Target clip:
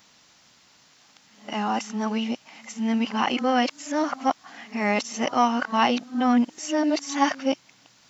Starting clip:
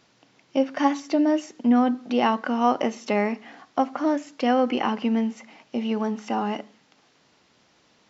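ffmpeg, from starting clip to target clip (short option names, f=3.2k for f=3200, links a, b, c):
-filter_complex "[0:a]areverse,equalizer=f=410:t=o:w=1.1:g=-7,acrossover=split=1800[a][b];[a]acontrast=42[c];[c][b]amix=inputs=2:normalize=0,crystalizer=i=5.5:c=0,volume=-4.5dB"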